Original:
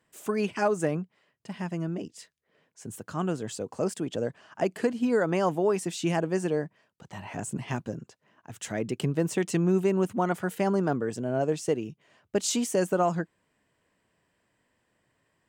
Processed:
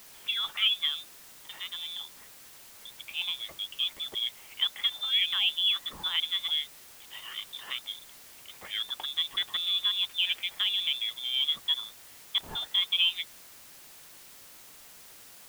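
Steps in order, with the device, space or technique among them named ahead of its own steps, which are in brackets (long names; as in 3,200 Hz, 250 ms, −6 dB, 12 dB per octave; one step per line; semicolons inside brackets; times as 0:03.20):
scrambled radio voice (band-pass filter 380–3,200 Hz; voice inversion scrambler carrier 3,800 Hz; white noise bed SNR 18 dB)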